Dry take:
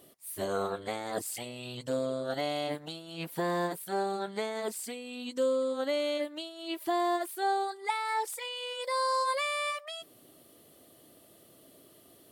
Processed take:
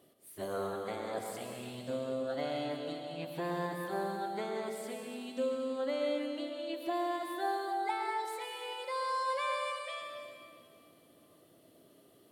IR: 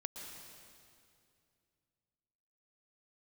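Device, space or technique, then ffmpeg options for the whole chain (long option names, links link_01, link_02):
swimming-pool hall: -filter_complex "[1:a]atrim=start_sample=2205[link_01];[0:a][link_01]afir=irnorm=-1:irlink=0,highpass=76,highshelf=frequency=4200:gain=-7.5,volume=-1.5dB"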